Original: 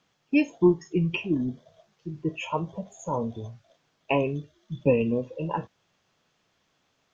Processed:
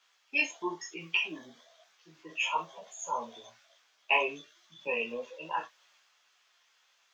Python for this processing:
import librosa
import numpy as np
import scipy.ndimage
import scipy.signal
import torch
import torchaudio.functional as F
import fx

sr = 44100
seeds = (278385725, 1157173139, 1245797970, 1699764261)

y = scipy.signal.sosfilt(scipy.signal.butter(2, 1200.0, 'highpass', fs=sr, output='sos'), x)
y = fx.transient(y, sr, attack_db=-1, sustain_db=3)
y = fx.chorus_voices(y, sr, voices=6, hz=1.0, base_ms=15, depth_ms=3.0, mix_pct=50)
y = fx.doubler(y, sr, ms=25.0, db=-11)
y = F.gain(torch.from_numpy(y), 7.5).numpy()